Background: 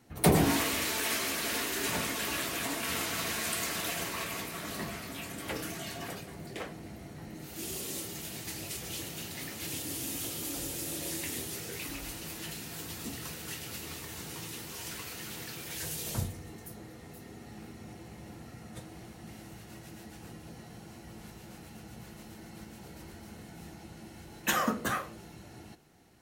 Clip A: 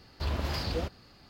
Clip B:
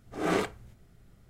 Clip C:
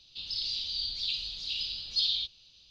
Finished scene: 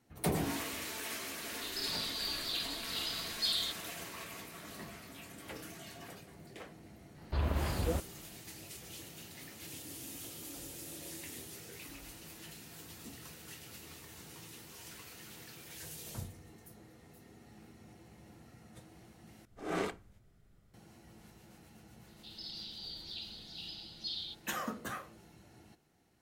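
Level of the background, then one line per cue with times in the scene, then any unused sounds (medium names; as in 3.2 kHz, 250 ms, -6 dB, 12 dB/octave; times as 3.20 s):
background -9.5 dB
1.46 s: add C -5 dB
7.12 s: add A -0.5 dB, fades 0.10 s + distance through air 280 m
19.45 s: replace with B -7.5 dB + hum notches 60/120/180/240/300/360 Hz
22.08 s: add C -12 dB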